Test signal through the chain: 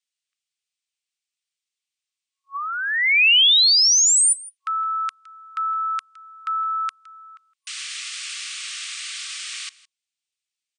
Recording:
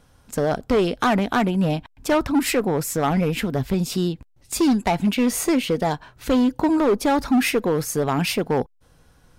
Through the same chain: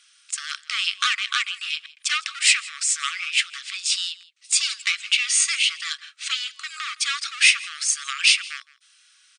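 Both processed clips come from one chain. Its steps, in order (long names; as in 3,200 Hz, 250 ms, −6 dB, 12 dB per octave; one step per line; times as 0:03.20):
high shelf with overshoot 1,900 Hz +9 dB, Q 1.5
single-tap delay 163 ms −21 dB
brick-wall band-pass 1,100–9,500 Hz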